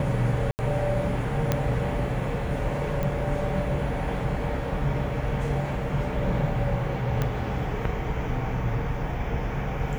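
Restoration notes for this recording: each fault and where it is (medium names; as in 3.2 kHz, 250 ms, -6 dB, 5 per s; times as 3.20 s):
0.51–0.59 s: dropout 79 ms
1.52 s: pop -9 dBFS
3.03 s: pop -17 dBFS
7.22 s: pop -13 dBFS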